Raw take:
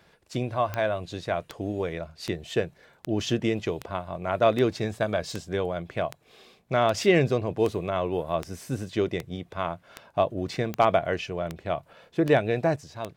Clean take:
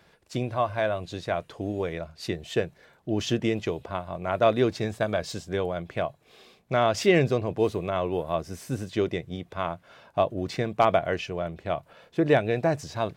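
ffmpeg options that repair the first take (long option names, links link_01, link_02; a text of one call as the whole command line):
ffmpeg -i in.wav -af "adeclick=threshold=4,asetnsamples=nb_out_samples=441:pad=0,asendcmd='12.76 volume volume 7dB',volume=0dB" out.wav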